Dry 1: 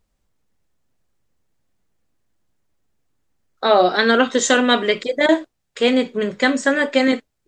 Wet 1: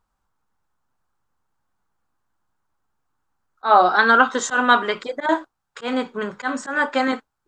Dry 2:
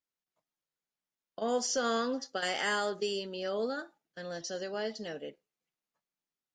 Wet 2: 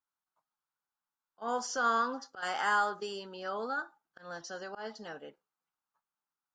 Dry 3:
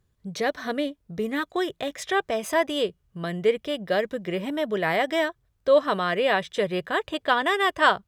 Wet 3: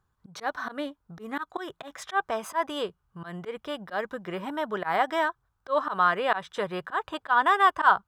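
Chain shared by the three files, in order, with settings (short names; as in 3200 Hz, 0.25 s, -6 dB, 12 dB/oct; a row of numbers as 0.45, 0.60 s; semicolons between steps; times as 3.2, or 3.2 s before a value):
band shelf 1100 Hz +13 dB 1.2 oct; auto swell 0.117 s; gain -6 dB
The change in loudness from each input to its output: -2.0, 0.0, -2.5 LU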